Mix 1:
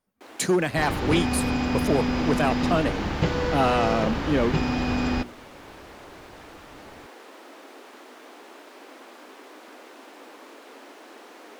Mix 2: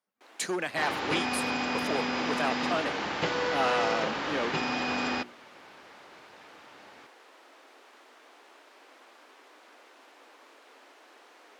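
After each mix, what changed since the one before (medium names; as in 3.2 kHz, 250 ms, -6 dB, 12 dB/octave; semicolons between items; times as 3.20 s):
speech -5.0 dB; first sound -8.0 dB; master: add frequency weighting A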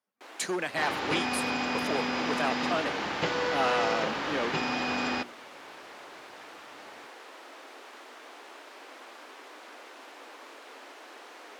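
first sound +7.5 dB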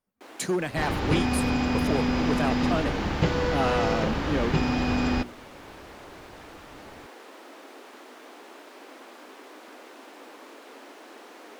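master: remove frequency weighting A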